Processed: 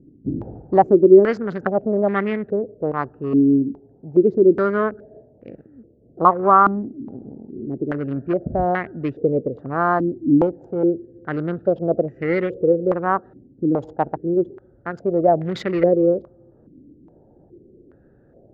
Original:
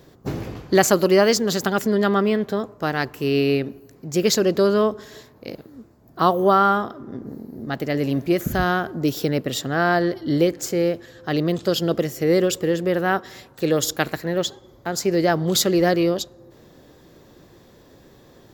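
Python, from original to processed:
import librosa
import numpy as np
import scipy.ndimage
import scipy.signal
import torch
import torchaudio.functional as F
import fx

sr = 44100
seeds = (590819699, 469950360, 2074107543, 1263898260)

y = fx.wiener(x, sr, points=41)
y = fx.filter_held_lowpass(y, sr, hz=2.4, low_hz=280.0, high_hz=2000.0)
y = y * 10.0 ** (-2.5 / 20.0)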